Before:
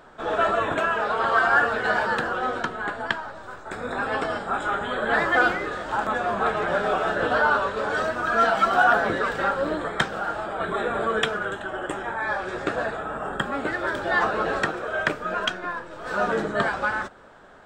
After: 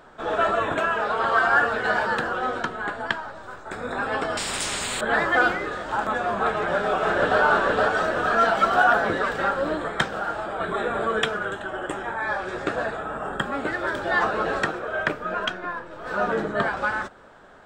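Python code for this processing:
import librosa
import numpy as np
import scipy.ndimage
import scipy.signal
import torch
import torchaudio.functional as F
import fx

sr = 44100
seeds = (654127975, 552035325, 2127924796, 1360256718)

y = fx.spectral_comp(x, sr, ratio=10.0, at=(4.37, 5.01))
y = fx.echo_throw(y, sr, start_s=6.55, length_s=0.86, ms=470, feedback_pct=65, wet_db=-1.5)
y = fx.peak_eq(y, sr, hz=8200.0, db=-6.0, octaves=2.0, at=(14.77, 16.77))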